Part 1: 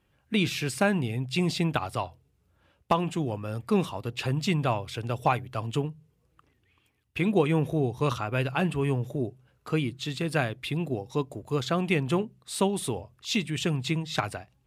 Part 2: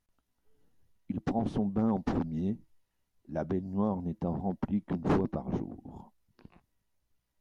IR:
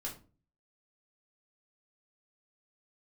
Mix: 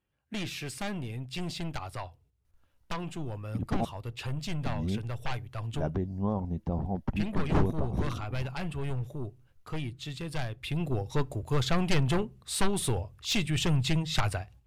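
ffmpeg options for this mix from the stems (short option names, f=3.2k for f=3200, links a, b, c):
-filter_complex "[0:a]agate=range=-7dB:threshold=-59dB:ratio=16:detection=peak,aeval=exprs='0.299*sin(PI/2*3.16*val(0)/0.299)':c=same,volume=-12dB,afade=t=in:st=10.55:d=0.46:silence=0.398107,asplit=2[a][b];[b]volume=-22.5dB[c];[1:a]adelay=2450,volume=0.5dB,asplit=3[d][e][f];[d]atrim=end=3.85,asetpts=PTS-STARTPTS,afade=t=out:st=3.846:d=0.004:c=hsin[g];[e]atrim=start=3.85:end=4.66,asetpts=PTS-STARTPTS,volume=0[h];[f]atrim=start=4.66,asetpts=PTS-STARTPTS,afade=t=in:d=0.004:c=hsin[i];[g][h][i]concat=n=3:v=0:a=1[j];[2:a]atrim=start_sample=2205[k];[c][k]afir=irnorm=-1:irlink=0[l];[a][j][l]amix=inputs=3:normalize=0,asubboost=boost=4.5:cutoff=100"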